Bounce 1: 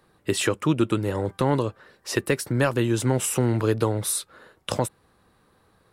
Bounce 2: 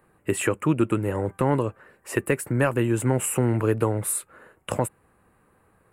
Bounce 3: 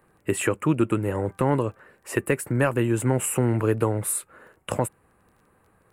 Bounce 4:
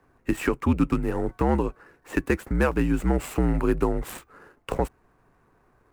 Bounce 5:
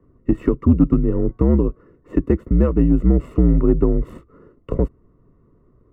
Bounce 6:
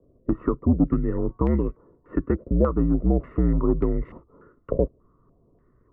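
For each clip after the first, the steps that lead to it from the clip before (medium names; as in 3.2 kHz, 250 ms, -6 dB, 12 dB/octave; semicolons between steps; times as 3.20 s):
high-order bell 4.5 kHz -15 dB 1.1 oct
crackle 11 per s -48 dBFS
median filter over 9 samples; frequency shift -67 Hz
boxcar filter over 55 samples; in parallel at -6.5 dB: saturation -20 dBFS, distortion -12 dB; on the sum: trim +7 dB
step-sequenced low-pass 3.4 Hz 600–2100 Hz; trim -6.5 dB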